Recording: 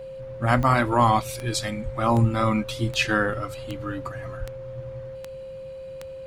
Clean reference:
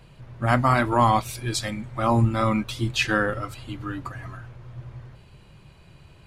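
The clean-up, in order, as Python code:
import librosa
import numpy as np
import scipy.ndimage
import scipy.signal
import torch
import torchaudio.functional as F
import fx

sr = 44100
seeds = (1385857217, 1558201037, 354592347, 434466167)

y = fx.fix_declick_ar(x, sr, threshold=10.0)
y = fx.notch(y, sr, hz=530.0, q=30.0)
y = fx.highpass(y, sr, hz=140.0, slope=24, at=(0.56, 0.68), fade=0.02)
y = fx.highpass(y, sr, hz=140.0, slope=24, at=(1.84, 1.96), fade=0.02)
y = fx.highpass(y, sr, hz=140.0, slope=24, at=(4.39, 4.51), fade=0.02)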